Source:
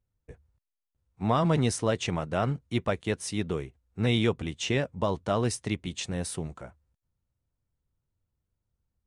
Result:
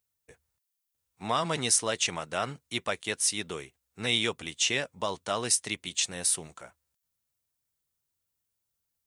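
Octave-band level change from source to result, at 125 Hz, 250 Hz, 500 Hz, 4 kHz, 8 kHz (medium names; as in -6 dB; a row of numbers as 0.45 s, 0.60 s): -12.5 dB, -9.0 dB, -5.0 dB, +6.5 dB, +10.5 dB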